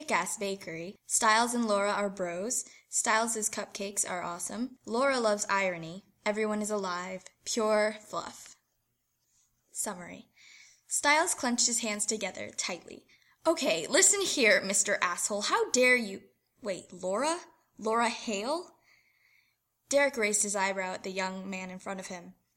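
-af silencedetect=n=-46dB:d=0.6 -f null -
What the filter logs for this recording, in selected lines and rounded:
silence_start: 8.53
silence_end: 9.75 | silence_duration: 1.22
silence_start: 18.68
silence_end: 19.91 | silence_duration: 1.23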